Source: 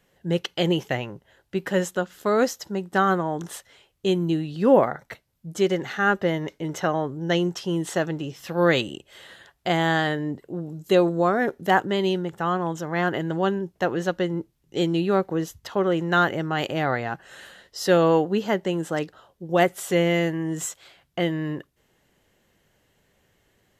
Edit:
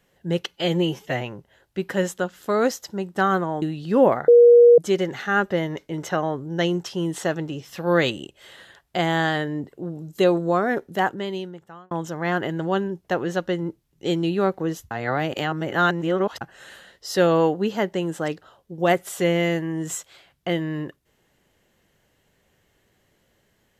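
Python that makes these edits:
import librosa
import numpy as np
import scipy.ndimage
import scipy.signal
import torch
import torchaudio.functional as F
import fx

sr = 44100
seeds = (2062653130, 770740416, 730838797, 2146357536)

y = fx.edit(x, sr, fx.stretch_span(start_s=0.52, length_s=0.46, factor=1.5),
    fx.cut(start_s=3.39, length_s=0.94),
    fx.bleep(start_s=4.99, length_s=0.5, hz=477.0, db=-7.5),
    fx.fade_out_span(start_s=11.42, length_s=1.2),
    fx.reverse_span(start_s=15.62, length_s=1.5), tone=tone)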